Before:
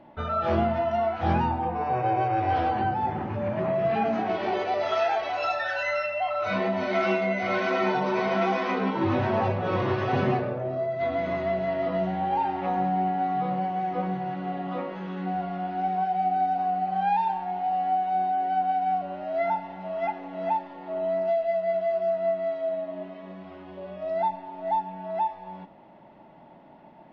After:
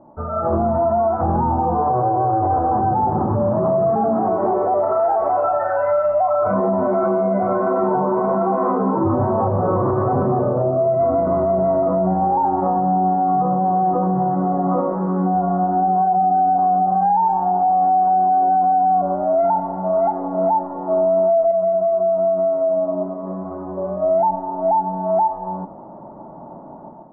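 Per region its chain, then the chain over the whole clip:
21.51–23.27 air absorption 290 m + compressor, threshold -29 dBFS + notch 1700 Hz, Q 23
whole clip: elliptic low-pass 1200 Hz, stop band 70 dB; AGC gain up to 10 dB; limiter -15.5 dBFS; gain +4.5 dB

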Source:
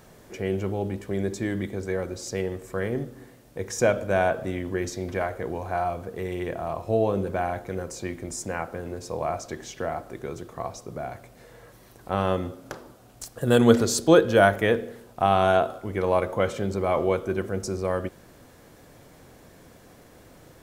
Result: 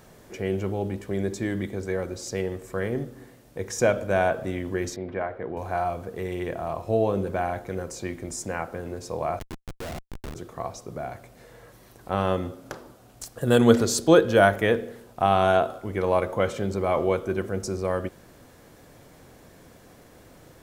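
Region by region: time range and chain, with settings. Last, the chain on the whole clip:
4.96–5.57 HPF 160 Hz 6 dB/oct + air absorption 420 m
9.39–10.35 Schmitt trigger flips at -30 dBFS + mismatched tape noise reduction encoder only
whole clip: dry

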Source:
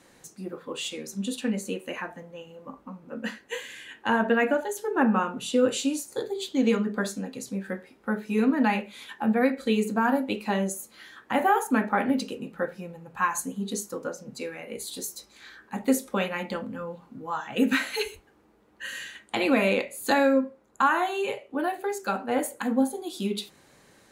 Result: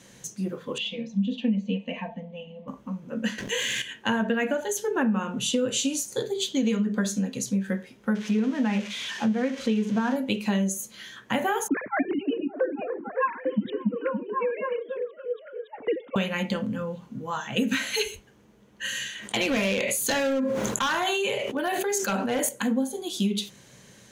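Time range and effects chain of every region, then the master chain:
0.78–2.68 LPF 3100 Hz 24 dB/oct + fixed phaser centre 380 Hz, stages 6 + comb 4.4 ms, depth 57%
3.38–3.82 backlash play -54 dBFS + fast leveller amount 70%
8.15–10.16 switching spikes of -18 dBFS + Bessel low-pass 1800 Hz
11.68–16.16 sine-wave speech + low-pass opened by the level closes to 420 Hz, open at -24 dBFS + delay with a stepping band-pass 0.282 s, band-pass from 220 Hz, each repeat 0.7 oct, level -0.5 dB
19.09–22.49 low shelf 180 Hz -8.5 dB + hard clip -20.5 dBFS + sustainer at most 28 dB/s
whole clip: thirty-one-band EQ 125 Hz +10 dB, 200 Hz +7 dB, 315 Hz -5 dB, 800 Hz -6 dB, 1250 Hz -5 dB, 3150 Hz +6 dB, 6300 Hz +9 dB; compressor, threshold -25 dBFS; gain +3.5 dB

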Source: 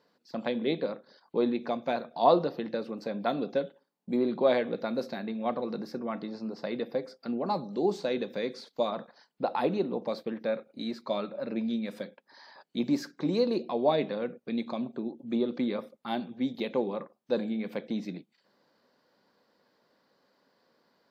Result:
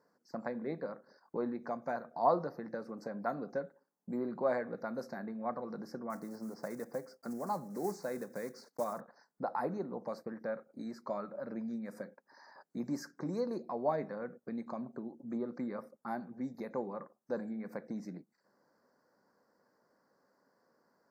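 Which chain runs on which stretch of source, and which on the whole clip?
6.1–9.01 block floating point 5-bit + HPF 52 Hz
whole clip: dynamic EQ 350 Hz, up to -7 dB, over -39 dBFS, Q 0.72; Chebyshev band-stop 1600–5900 Hz, order 2; gain -2.5 dB

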